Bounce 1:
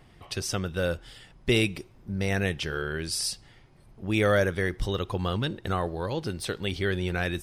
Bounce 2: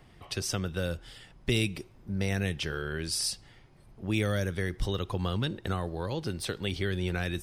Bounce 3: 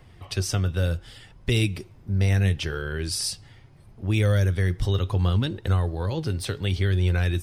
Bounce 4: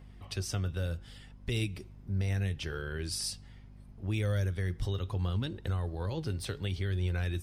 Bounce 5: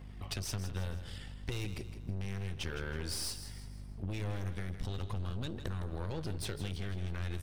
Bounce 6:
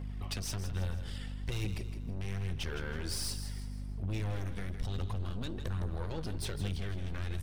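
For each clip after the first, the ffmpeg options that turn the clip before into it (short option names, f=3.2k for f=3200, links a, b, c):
-filter_complex "[0:a]acrossover=split=260|3000[a][b][c];[b]acompressor=threshold=-31dB:ratio=6[d];[a][d][c]amix=inputs=3:normalize=0,volume=-1dB"
-af "flanger=delay=1.9:depth=5.7:regen=71:speed=0.7:shape=sinusoidal,equalizer=f=93:t=o:w=0.64:g=11.5,volume=7dB"
-af "alimiter=limit=-15dB:level=0:latency=1:release=239,aeval=exprs='val(0)+0.00708*(sin(2*PI*50*n/s)+sin(2*PI*2*50*n/s)/2+sin(2*PI*3*50*n/s)/3+sin(2*PI*4*50*n/s)/4+sin(2*PI*5*50*n/s)/5)':c=same,volume=-7.5dB"
-af "aeval=exprs='(tanh(56.2*val(0)+0.7)-tanh(0.7))/56.2':c=same,acompressor=threshold=-41dB:ratio=6,aecho=1:1:161|322|483|644:0.282|0.118|0.0497|0.0209,volume=7dB"
-af "asoftclip=type=tanh:threshold=-29dB,aphaser=in_gain=1:out_gain=1:delay=4.5:decay=0.31:speed=1.2:type=triangular,aeval=exprs='val(0)+0.00447*(sin(2*PI*50*n/s)+sin(2*PI*2*50*n/s)/2+sin(2*PI*3*50*n/s)/3+sin(2*PI*4*50*n/s)/4+sin(2*PI*5*50*n/s)/5)':c=same,volume=1.5dB"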